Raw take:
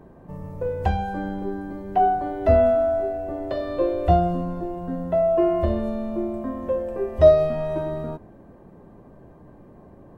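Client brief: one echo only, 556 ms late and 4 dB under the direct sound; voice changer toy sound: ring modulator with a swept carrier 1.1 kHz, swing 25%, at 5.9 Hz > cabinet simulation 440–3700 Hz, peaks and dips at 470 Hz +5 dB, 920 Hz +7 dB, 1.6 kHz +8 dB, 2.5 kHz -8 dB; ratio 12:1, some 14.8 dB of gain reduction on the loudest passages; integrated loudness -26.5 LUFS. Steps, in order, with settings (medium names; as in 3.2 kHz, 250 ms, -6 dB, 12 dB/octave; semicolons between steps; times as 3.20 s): compression 12:1, threshold -23 dBFS; delay 556 ms -4 dB; ring modulator with a swept carrier 1.1 kHz, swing 25%, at 5.9 Hz; cabinet simulation 440–3700 Hz, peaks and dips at 470 Hz +5 dB, 920 Hz +7 dB, 1.6 kHz +8 dB, 2.5 kHz -8 dB; trim -1.5 dB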